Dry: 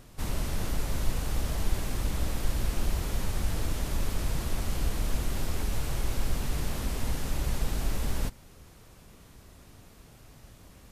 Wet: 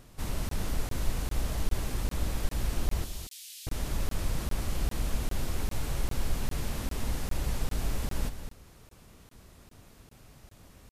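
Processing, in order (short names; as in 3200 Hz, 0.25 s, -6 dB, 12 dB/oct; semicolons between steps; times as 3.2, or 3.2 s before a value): 3.04–3.67 inverse Chebyshev high-pass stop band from 880 Hz, stop band 60 dB; echo 0.227 s -9.5 dB; crackling interface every 0.40 s, samples 1024, zero, from 0.49; gain -2 dB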